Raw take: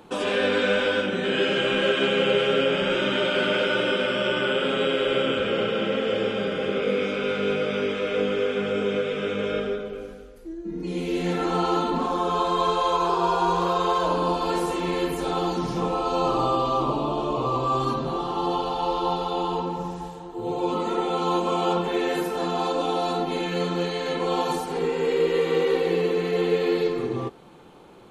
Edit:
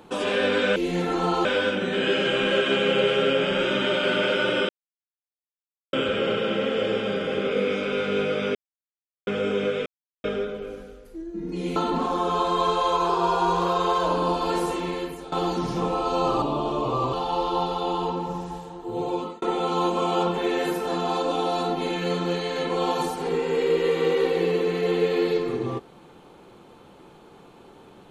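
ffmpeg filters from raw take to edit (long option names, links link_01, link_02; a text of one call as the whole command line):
ffmpeg -i in.wav -filter_complex "[0:a]asplit=14[link_01][link_02][link_03][link_04][link_05][link_06][link_07][link_08][link_09][link_10][link_11][link_12][link_13][link_14];[link_01]atrim=end=0.762[link_15];[link_02]atrim=start=11.068:end=11.762[link_16];[link_03]atrim=start=0.758:end=4,asetpts=PTS-STARTPTS,afade=type=out:start_time=3.238:duration=0.004:curve=hsin[link_17];[link_04]atrim=start=4:end=5.24,asetpts=PTS-STARTPTS,volume=0[link_18];[link_05]atrim=start=5.24:end=7.86,asetpts=PTS-STARTPTS,afade=type=in:duration=0.004:curve=hsin,afade=type=out:start_time=2.616:duration=0.004:curve=hsin[link_19];[link_06]atrim=start=7.86:end=8.58,asetpts=PTS-STARTPTS,volume=0[link_20];[link_07]atrim=start=8.58:end=9.17,asetpts=PTS-STARTPTS,afade=type=in:duration=0.004:curve=hsin,afade=type=out:start_time=0.586:duration=0.004:curve=hsin[link_21];[link_08]atrim=start=9.17:end=9.55,asetpts=PTS-STARTPTS,volume=0[link_22];[link_09]atrim=start=9.55:end=11.072,asetpts=PTS-STARTPTS,afade=type=in:duration=0.004:curve=hsin[link_23];[link_10]atrim=start=11.758:end=15.32,asetpts=PTS-STARTPTS,afade=type=out:start_time=2.912:duration=0.65:silence=0.16788[link_24];[link_11]atrim=start=15.32:end=16.422,asetpts=PTS-STARTPTS,afade=type=in:duration=0.004:curve=hsin:silence=0.16788[link_25];[link_12]atrim=start=16.938:end=17.652[link_26];[link_13]atrim=start=18.628:end=20.92,asetpts=PTS-STARTPTS,afade=type=out:start_time=1.952:duration=0.34[link_27];[link_14]atrim=start=20.92,asetpts=PTS-STARTPTS,afade=type=in:duration=0.004:curve=hsin[link_28];[link_15][link_16]acrossfade=duration=0.004:curve1=hsin:curve2=hsin[link_29];[link_17][link_18][link_19][link_20][link_21][link_22][link_23]concat=n=7:v=0:a=1[link_30];[link_29][link_30]acrossfade=duration=0.004:curve1=hsin:curve2=hsin[link_31];[link_24][link_25]concat=n=2:v=0:a=1[link_32];[link_31][link_32]acrossfade=duration=0.004:curve1=hsin:curve2=hsin[link_33];[link_33][link_26]acrossfade=duration=0.004:curve1=hsin:curve2=hsin[link_34];[link_27][link_28]concat=n=2:v=0:a=1[link_35];[link_34][link_35]acrossfade=duration=0.004:curve1=hsin:curve2=hsin" out.wav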